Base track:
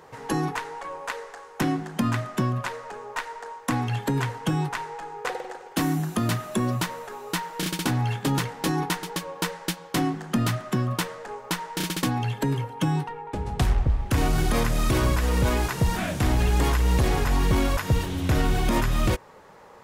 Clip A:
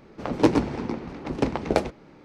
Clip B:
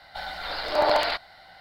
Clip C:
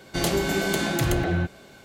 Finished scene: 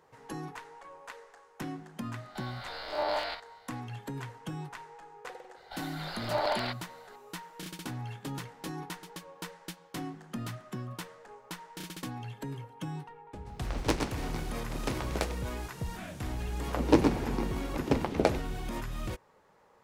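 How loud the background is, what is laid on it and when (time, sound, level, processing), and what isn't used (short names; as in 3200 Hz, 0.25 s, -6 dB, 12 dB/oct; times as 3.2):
base track -14 dB
2.2 add B -8.5 dB + stepped spectrum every 50 ms
5.56 add B -8.5 dB
13.45 add A -11 dB + spectral contrast lowered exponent 0.62
16.49 add A -3.5 dB
not used: C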